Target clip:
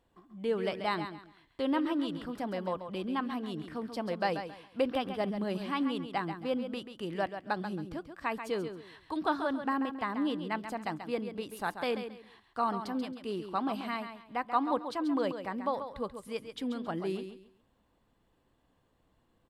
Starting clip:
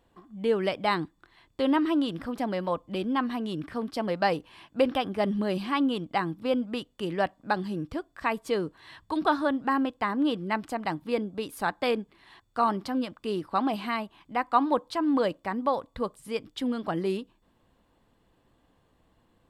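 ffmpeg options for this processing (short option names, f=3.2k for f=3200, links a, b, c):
-af "aecho=1:1:136|272|408:0.355|0.0923|0.024,volume=-6dB"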